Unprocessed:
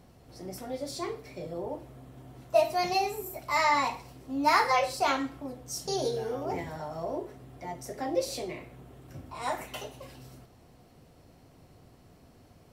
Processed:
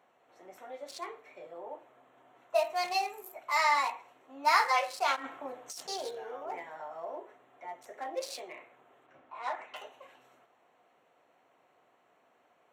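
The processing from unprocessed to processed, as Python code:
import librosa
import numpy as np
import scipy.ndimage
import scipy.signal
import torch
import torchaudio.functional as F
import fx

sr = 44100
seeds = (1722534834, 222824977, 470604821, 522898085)

y = fx.wiener(x, sr, points=9)
y = scipy.signal.sosfilt(scipy.signal.butter(2, 770.0, 'highpass', fs=sr, output='sos'), y)
y = fx.over_compress(y, sr, threshold_db=-46.0, ratio=-1.0, at=(5.15, 5.87), fade=0.02)
y = fx.air_absorb(y, sr, metres=110.0, at=(9.06, 9.76))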